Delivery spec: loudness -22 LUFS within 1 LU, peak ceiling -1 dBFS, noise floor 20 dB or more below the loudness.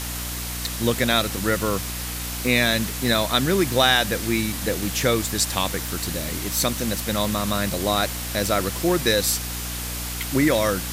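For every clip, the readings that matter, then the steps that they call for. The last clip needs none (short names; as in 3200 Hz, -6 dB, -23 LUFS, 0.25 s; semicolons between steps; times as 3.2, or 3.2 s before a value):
hum 60 Hz; harmonics up to 300 Hz; hum level -31 dBFS; noise floor -30 dBFS; noise floor target -43 dBFS; loudness -22.5 LUFS; peak -4.0 dBFS; loudness target -22.0 LUFS
-> notches 60/120/180/240/300 Hz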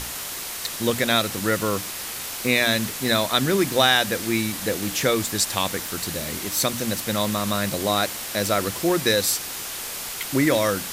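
hum none; noise floor -33 dBFS; noise floor target -43 dBFS
-> denoiser 10 dB, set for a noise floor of -33 dBFS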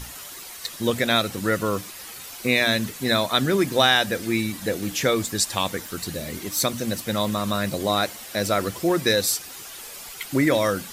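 noise floor -39 dBFS; noise floor target -43 dBFS
-> denoiser 6 dB, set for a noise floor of -39 dBFS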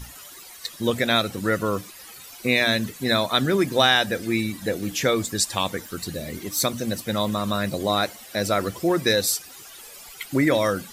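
noise floor -43 dBFS; loudness -23.0 LUFS; peak -4.5 dBFS; loudness target -22.0 LUFS
-> gain +1 dB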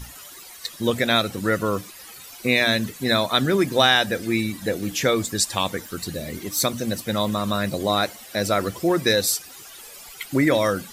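loudness -22.0 LUFS; peak -3.5 dBFS; noise floor -42 dBFS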